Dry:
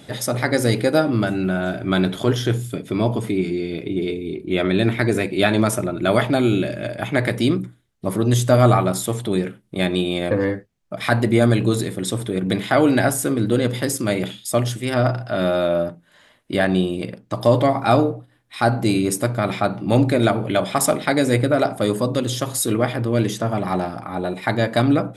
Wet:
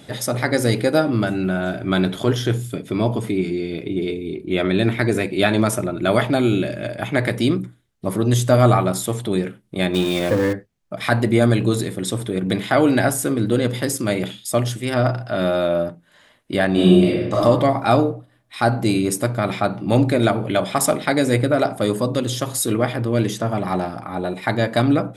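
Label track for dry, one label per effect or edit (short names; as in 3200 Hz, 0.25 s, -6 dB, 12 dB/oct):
9.940000	10.530000	zero-crossing step of -25.5 dBFS
16.720000	17.390000	reverb throw, RT60 1.1 s, DRR -7.5 dB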